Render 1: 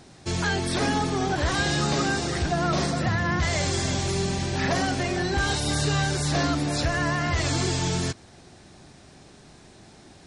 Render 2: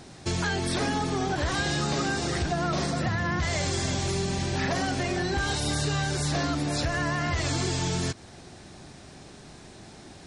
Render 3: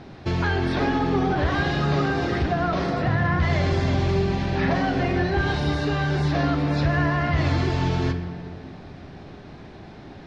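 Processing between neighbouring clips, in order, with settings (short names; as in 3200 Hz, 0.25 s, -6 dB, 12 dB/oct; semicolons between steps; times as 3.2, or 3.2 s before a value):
compressor 3:1, threshold -29 dBFS, peak gain reduction 7 dB; gain +3 dB
air absorption 280 m; on a send at -6.5 dB: reverb RT60 1.9 s, pre-delay 6 ms; on the sum: gain +5 dB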